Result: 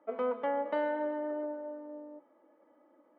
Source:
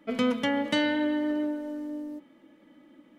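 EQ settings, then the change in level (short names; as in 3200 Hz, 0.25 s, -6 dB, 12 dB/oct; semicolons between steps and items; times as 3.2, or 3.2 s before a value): Butterworth band-pass 740 Hz, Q 1; 0.0 dB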